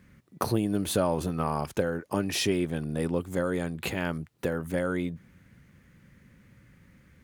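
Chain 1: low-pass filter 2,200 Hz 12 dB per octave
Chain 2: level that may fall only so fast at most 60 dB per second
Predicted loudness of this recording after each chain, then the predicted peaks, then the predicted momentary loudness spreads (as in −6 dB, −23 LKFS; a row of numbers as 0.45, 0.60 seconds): −30.0, −29.0 LKFS; −11.5, −11.0 dBFS; 6, 6 LU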